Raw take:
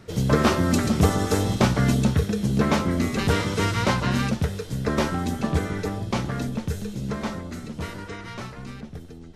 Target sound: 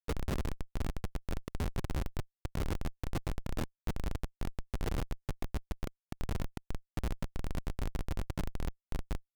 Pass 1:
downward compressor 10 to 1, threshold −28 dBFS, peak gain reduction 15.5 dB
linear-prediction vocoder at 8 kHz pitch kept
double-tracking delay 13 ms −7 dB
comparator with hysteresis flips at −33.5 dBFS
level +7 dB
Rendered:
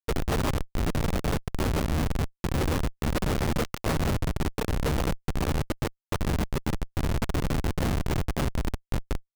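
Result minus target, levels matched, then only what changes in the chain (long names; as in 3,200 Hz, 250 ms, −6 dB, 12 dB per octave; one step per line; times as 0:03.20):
downward compressor: peak gain reduction −7 dB
change: downward compressor 10 to 1, threshold −36 dBFS, peak gain reduction 22.5 dB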